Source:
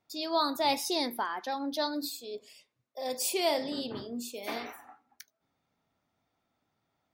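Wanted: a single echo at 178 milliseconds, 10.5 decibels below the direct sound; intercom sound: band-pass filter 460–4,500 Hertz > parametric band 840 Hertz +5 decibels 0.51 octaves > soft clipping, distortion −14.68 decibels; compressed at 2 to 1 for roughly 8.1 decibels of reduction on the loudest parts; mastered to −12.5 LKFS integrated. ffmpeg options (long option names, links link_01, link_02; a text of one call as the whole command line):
ffmpeg -i in.wav -af "acompressor=threshold=-38dB:ratio=2,highpass=460,lowpass=4500,equalizer=frequency=840:width_type=o:width=0.51:gain=5,aecho=1:1:178:0.299,asoftclip=threshold=-31dB,volume=28dB" out.wav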